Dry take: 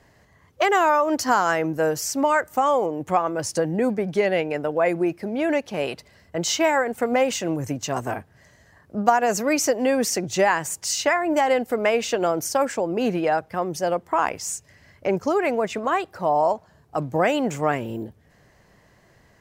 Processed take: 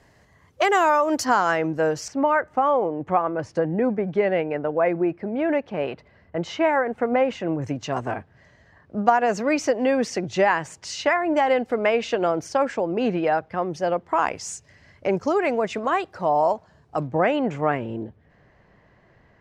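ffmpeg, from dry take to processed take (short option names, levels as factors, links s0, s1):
-af "asetnsamples=n=441:p=0,asendcmd='1.25 lowpass f 5000;2.08 lowpass f 2100;7.62 lowpass f 3800;14.09 lowpass f 6400;17.07 lowpass f 2700',lowpass=12000"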